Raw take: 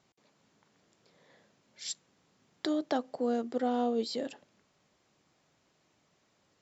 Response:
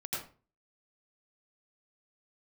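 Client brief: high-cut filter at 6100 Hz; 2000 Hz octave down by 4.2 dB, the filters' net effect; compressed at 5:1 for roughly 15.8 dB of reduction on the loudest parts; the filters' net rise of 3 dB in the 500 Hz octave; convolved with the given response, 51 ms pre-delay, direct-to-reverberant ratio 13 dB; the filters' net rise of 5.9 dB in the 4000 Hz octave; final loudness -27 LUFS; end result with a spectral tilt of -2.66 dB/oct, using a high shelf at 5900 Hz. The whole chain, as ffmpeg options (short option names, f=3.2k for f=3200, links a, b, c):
-filter_complex "[0:a]lowpass=6.1k,equalizer=f=500:t=o:g=3.5,equalizer=f=2k:t=o:g=-8,equalizer=f=4k:t=o:g=8,highshelf=f=5.9k:g=4,acompressor=threshold=-44dB:ratio=5,asplit=2[a][b];[1:a]atrim=start_sample=2205,adelay=51[c];[b][c]afir=irnorm=-1:irlink=0,volume=-15.5dB[d];[a][d]amix=inputs=2:normalize=0,volume=19.5dB"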